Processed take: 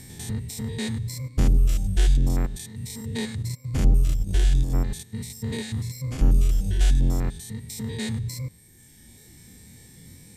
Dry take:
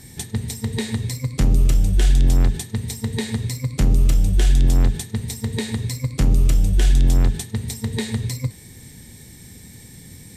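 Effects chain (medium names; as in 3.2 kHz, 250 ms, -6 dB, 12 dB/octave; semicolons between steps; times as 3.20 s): spectrogram pixelated in time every 100 ms; reverb removal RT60 1.8 s; 3.36–4.76 s: transient shaper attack +1 dB, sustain -12 dB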